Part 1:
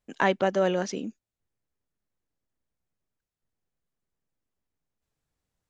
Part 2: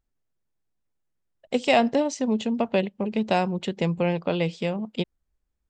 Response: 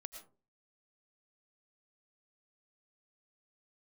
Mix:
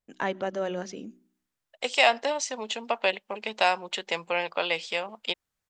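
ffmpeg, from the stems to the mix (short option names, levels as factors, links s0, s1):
-filter_complex "[0:a]bandreject=f=62.19:t=h:w=4,bandreject=f=124.38:t=h:w=4,bandreject=f=186.57:t=h:w=4,bandreject=f=248.76:t=h:w=4,bandreject=f=310.95:t=h:w=4,bandreject=f=373.14:t=h:w=4,volume=0.473,asplit=2[s0][s1];[s1]volume=0.133[s2];[1:a]highpass=910,dynaudnorm=f=370:g=3:m=2.82,adelay=300,volume=0.708[s3];[2:a]atrim=start_sample=2205[s4];[s2][s4]afir=irnorm=-1:irlink=0[s5];[s0][s3][s5]amix=inputs=3:normalize=0"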